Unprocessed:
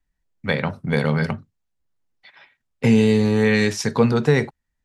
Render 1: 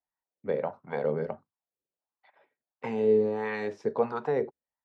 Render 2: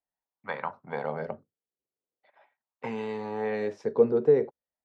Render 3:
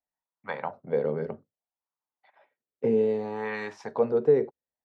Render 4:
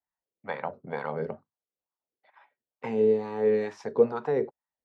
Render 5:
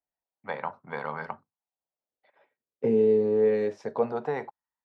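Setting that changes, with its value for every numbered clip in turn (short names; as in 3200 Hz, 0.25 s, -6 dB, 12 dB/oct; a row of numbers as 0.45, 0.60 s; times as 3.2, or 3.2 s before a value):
wah, rate: 1.5, 0.42, 0.63, 2.2, 0.25 Hz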